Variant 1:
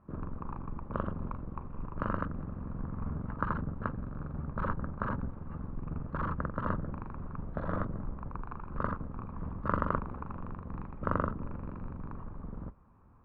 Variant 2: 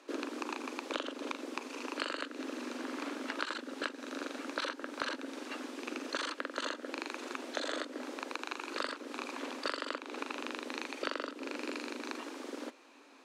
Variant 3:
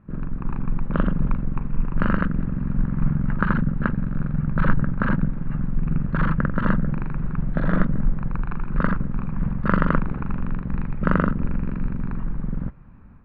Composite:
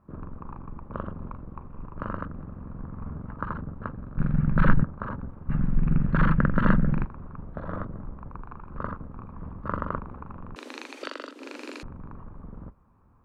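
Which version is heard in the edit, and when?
1
4.18–4.84 s: from 3
5.49–7.05 s: from 3
10.56–11.83 s: from 2

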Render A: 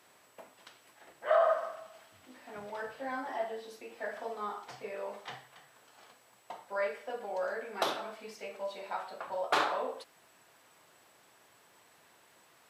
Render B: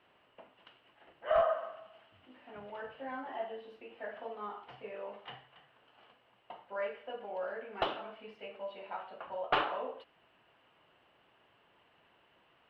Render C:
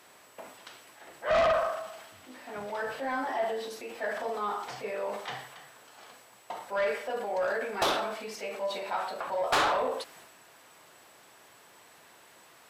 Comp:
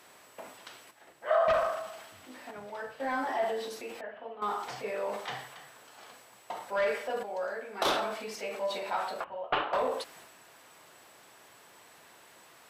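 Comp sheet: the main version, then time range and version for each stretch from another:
C
0.91–1.48 s: from A
2.51–3.00 s: from A
4.01–4.42 s: from B
7.23–7.85 s: from A
9.24–9.73 s: from B

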